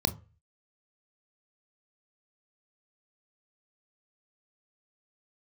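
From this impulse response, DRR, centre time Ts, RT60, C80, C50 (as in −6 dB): 10.0 dB, 5 ms, 0.35 s, 24.5 dB, 19.0 dB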